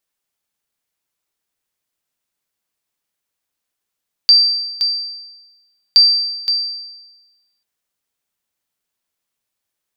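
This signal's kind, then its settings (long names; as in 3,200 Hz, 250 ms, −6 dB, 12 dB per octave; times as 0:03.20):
ping with an echo 4,680 Hz, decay 1.15 s, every 1.67 s, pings 2, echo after 0.52 s, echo −7.5 dB −3 dBFS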